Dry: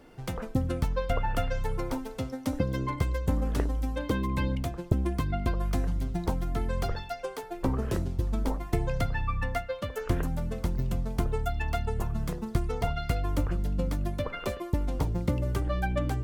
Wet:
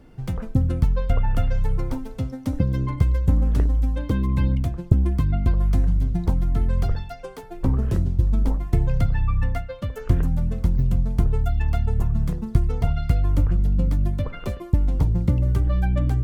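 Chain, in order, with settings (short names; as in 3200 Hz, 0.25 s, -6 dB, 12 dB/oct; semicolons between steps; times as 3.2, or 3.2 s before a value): tone controls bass +12 dB, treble -1 dB; gain -2 dB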